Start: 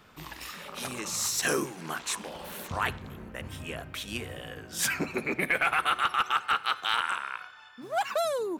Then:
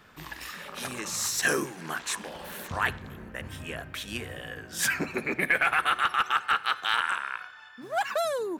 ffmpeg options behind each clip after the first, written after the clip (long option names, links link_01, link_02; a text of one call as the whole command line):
ffmpeg -i in.wav -af "equalizer=frequency=1700:width=4.6:gain=6.5" out.wav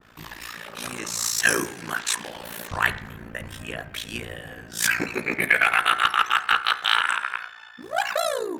ffmpeg -i in.wav -af "tremolo=f=57:d=0.889,bandreject=frequency=67.77:width_type=h:width=4,bandreject=frequency=135.54:width_type=h:width=4,bandreject=frequency=203.31:width_type=h:width=4,bandreject=frequency=271.08:width_type=h:width=4,bandreject=frequency=338.85:width_type=h:width=4,bandreject=frequency=406.62:width_type=h:width=4,bandreject=frequency=474.39:width_type=h:width=4,bandreject=frequency=542.16:width_type=h:width=4,bandreject=frequency=609.93:width_type=h:width=4,bandreject=frequency=677.7:width_type=h:width=4,bandreject=frequency=745.47:width_type=h:width=4,bandreject=frequency=813.24:width_type=h:width=4,bandreject=frequency=881.01:width_type=h:width=4,bandreject=frequency=948.78:width_type=h:width=4,bandreject=frequency=1016.55:width_type=h:width=4,bandreject=frequency=1084.32:width_type=h:width=4,bandreject=frequency=1152.09:width_type=h:width=4,bandreject=frequency=1219.86:width_type=h:width=4,bandreject=frequency=1287.63:width_type=h:width=4,bandreject=frequency=1355.4:width_type=h:width=4,bandreject=frequency=1423.17:width_type=h:width=4,bandreject=frequency=1490.94:width_type=h:width=4,bandreject=frequency=1558.71:width_type=h:width=4,bandreject=frequency=1626.48:width_type=h:width=4,bandreject=frequency=1694.25:width_type=h:width=4,bandreject=frequency=1762.02:width_type=h:width=4,bandreject=frequency=1829.79:width_type=h:width=4,bandreject=frequency=1897.56:width_type=h:width=4,bandreject=frequency=1965.33:width_type=h:width=4,bandreject=frequency=2033.1:width_type=h:width=4,bandreject=frequency=2100.87:width_type=h:width=4,bandreject=frequency=2168.64:width_type=h:width=4,bandreject=frequency=2236.41:width_type=h:width=4,adynamicequalizer=threshold=0.0112:dfrequency=1500:dqfactor=0.7:tfrequency=1500:tqfactor=0.7:attack=5:release=100:ratio=0.375:range=2.5:mode=boostabove:tftype=highshelf,volume=6.5dB" out.wav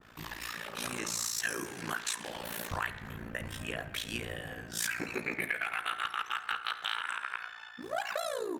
ffmpeg -i in.wav -af "acompressor=threshold=-28dB:ratio=6,aecho=1:1:69|138|207|276:0.119|0.0606|0.0309|0.0158,volume=-3dB" out.wav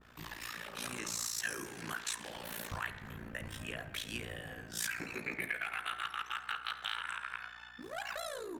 ffmpeg -i in.wav -filter_complex "[0:a]acrossover=split=230|1200|6900[link_01][link_02][link_03][link_04];[link_02]asoftclip=type=tanh:threshold=-37.5dB[link_05];[link_01][link_05][link_03][link_04]amix=inputs=4:normalize=0,aeval=exprs='val(0)+0.000631*(sin(2*PI*60*n/s)+sin(2*PI*2*60*n/s)/2+sin(2*PI*3*60*n/s)/3+sin(2*PI*4*60*n/s)/4+sin(2*PI*5*60*n/s)/5)':channel_layout=same,volume=-3.5dB" out.wav